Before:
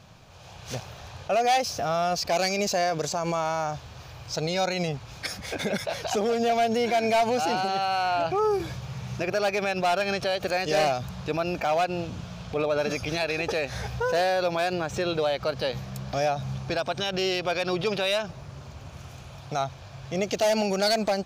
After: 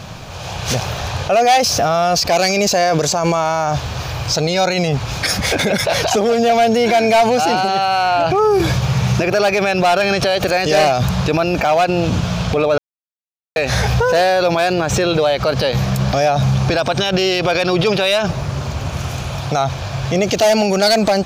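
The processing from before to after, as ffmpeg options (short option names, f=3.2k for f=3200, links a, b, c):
-filter_complex "[0:a]asplit=3[a][b][c];[a]atrim=end=12.78,asetpts=PTS-STARTPTS,afade=t=out:st=12.776:d=0.004:c=hsin[d];[b]atrim=start=12.78:end=13.56,asetpts=PTS-STARTPTS,volume=0[e];[c]atrim=start=13.56,asetpts=PTS-STARTPTS,afade=t=in:d=0.004:c=hsin[f];[d][e][f]concat=n=3:v=0:a=1,alimiter=level_in=26dB:limit=-1dB:release=50:level=0:latency=1,volume=-6.5dB"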